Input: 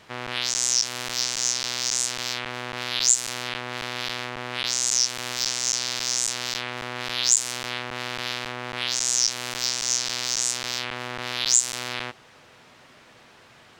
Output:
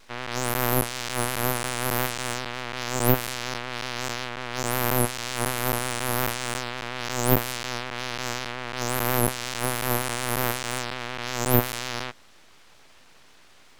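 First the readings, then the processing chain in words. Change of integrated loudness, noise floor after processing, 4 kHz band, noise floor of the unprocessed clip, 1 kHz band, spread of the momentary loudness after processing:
-2.5 dB, -52 dBFS, -7.0 dB, -52 dBFS, +6.0 dB, 9 LU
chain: full-wave rectifier; vibrato 5.5 Hz 55 cents

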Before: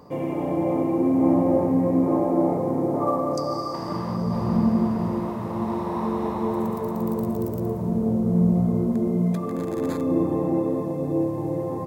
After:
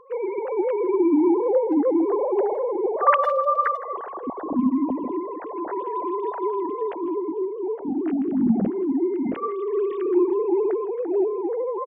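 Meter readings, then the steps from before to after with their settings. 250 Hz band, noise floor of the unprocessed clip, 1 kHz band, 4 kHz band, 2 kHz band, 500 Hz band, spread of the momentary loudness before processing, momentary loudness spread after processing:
-2.0 dB, -30 dBFS, +4.0 dB, no reading, +8.5 dB, +3.5 dB, 7 LU, 9 LU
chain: formants replaced by sine waves; speakerphone echo 160 ms, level -18 dB

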